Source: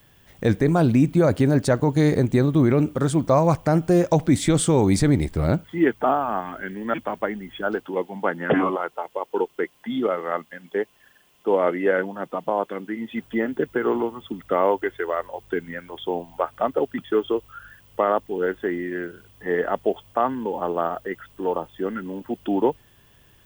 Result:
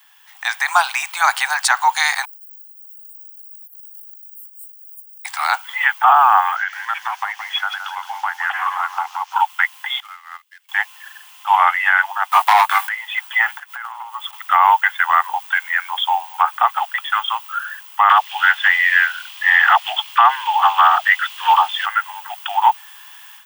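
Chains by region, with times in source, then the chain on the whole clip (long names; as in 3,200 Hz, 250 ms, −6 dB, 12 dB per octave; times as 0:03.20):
0:02.25–0:05.25: inverse Chebyshev band-stop filter 480–4,600 Hz, stop band 70 dB + flat-topped bell 4,800 Hz −11 dB 2.8 octaves
0:06.56–0:09.36: high shelf with overshoot 7,900 Hz −11 dB, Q 3 + downward compressor 4 to 1, threshold −32 dBFS + feedback echo at a low word length 169 ms, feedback 35%, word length 9 bits, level −9 dB
0:10.00–0:10.69: mu-law and A-law mismatch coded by A + guitar amp tone stack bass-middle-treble 6-0-2
0:12.31–0:12.89: high shelf with overshoot 7,700 Hz +6.5 dB, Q 1.5 + leveller curve on the samples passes 2 + double-tracking delay 18 ms −5 dB
0:13.57–0:14.33: one scale factor per block 7 bits + downward compressor, threshold −37 dBFS
0:18.09–0:21.86: parametric band 3,200 Hz +11.5 dB 1.9 octaves + all-pass dispersion lows, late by 146 ms, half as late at 320 Hz
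whole clip: Butterworth high-pass 780 Hz 96 dB per octave; automatic gain control gain up to 11.5 dB; boost into a limiter +7 dB; level −1 dB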